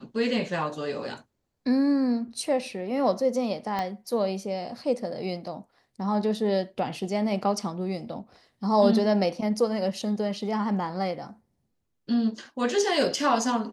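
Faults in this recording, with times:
3.79 s: pop -16 dBFS

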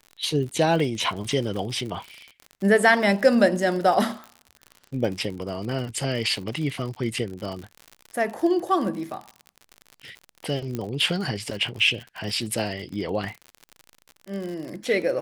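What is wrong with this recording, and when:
crackle 61 per s -31 dBFS
6.43 s: dropout 2 ms
10.75 s: pop -16 dBFS

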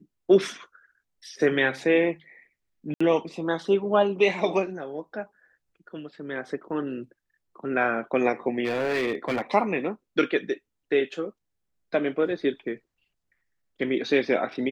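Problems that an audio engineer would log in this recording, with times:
2.94–3.00 s: dropout 65 ms
8.64–9.42 s: clipped -21.5 dBFS

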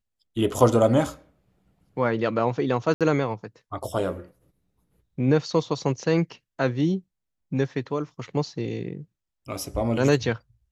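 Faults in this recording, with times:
2.94–3.01 s: dropout 67 ms

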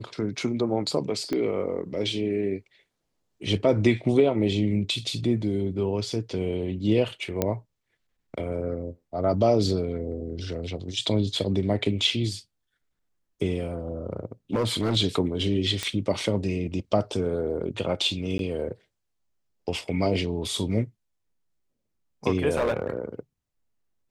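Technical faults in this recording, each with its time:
1.33 s: pop -16 dBFS
7.42 s: pop -9 dBFS
14.53–14.97 s: clipped -20 dBFS
15.83 s: pop -13 dBFS
18.38–18.39 s: dropout 12 ms
22.56–22.99 s: clipped -20 dBFS

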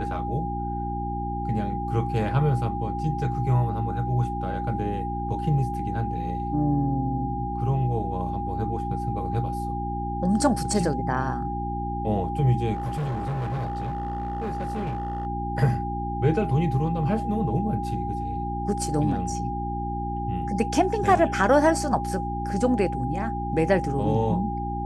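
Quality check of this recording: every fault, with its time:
hum 60 Hz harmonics 6 -31 dBFS
whine 810 Hz -30 dBFS
12.73–15.27 s: clipped -25 dBFS

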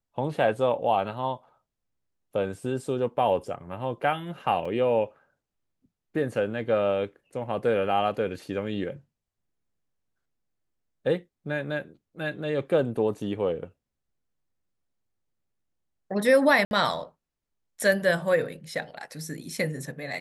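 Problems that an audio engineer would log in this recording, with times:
4.65 s: dropout 4.3 ms
16.65–16.71 s: dropout 61 ms

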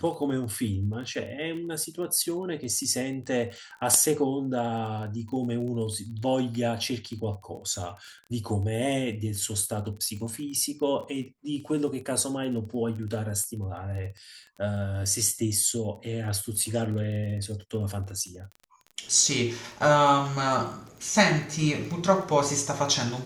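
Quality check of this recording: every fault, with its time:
crackle 19 per s -36 dBFS

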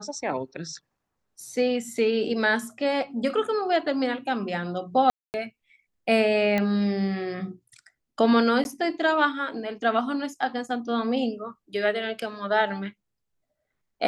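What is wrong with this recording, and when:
5.10–5.34 s: dropout 239 ms
6.58 s: pop -13 dBFS
8.64–8.65 s: dropout 11 ms

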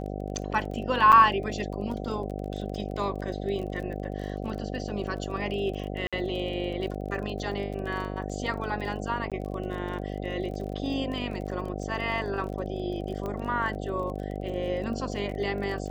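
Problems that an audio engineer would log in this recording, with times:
buzz 50 Hz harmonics 15 -34 dBFS
crackle 26 per s -36 dBFS
1.12–1.13 s: dropout 6.8 ms
6.07–6.13 s: dropout 56 ms
9.30–9.32 s: dropout 17 ms
13.26 s: pop -22 dBFS

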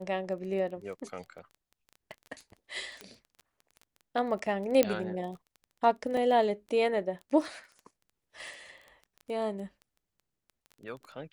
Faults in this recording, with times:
crackle 14 per s -39 dBFS
3.01 s: pop -26 dBFS
4.83 s: pop -10 dBFS
6.17 s: dropout 2.3 ms

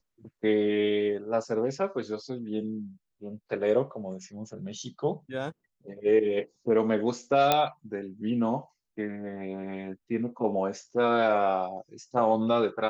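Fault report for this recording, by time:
7.52 s: pop -7 dBFS

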